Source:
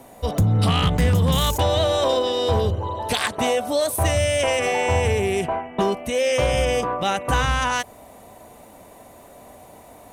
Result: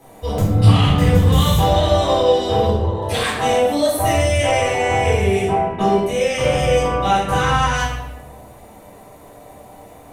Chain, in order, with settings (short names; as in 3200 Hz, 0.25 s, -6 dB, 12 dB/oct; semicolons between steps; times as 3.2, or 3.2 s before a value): shoebox room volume 380 m³, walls mixed, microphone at 3.9 m; gain -7.5 dB